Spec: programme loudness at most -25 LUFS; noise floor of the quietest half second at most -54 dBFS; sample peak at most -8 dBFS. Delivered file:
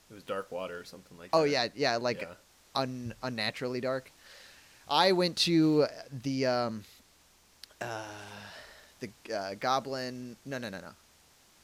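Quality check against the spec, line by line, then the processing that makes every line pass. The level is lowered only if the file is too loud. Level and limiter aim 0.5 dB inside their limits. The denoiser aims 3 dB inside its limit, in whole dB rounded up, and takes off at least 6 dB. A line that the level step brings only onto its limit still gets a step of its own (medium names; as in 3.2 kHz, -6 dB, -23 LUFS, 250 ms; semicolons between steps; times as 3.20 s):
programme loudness -31.0 LUFS: pass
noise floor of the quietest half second -63 dBFS: pass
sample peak -11.0 dBFS: pass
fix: none needed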